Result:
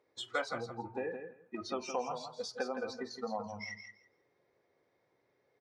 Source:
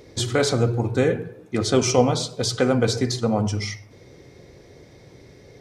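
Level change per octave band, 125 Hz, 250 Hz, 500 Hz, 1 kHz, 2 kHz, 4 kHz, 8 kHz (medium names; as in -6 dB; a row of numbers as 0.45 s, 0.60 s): -31.0 dB, -21.0 dB, -17.0 dB, -11.0 dB, -11.0 dB, -17.5 dB, -23.0 dB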